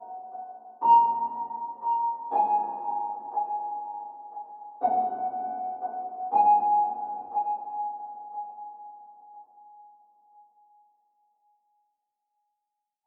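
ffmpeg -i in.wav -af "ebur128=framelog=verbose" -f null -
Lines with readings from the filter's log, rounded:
Integrated loudness:
  I:         -27.1 LUFS
  Threshold: -39.0 LUFS
Loudness range:
  LRA:        14.4 LU
  Threshold: -49.7 LUFS
  LRA low:   -40.6 LUFS
  LRA high:  -26.2 LUFS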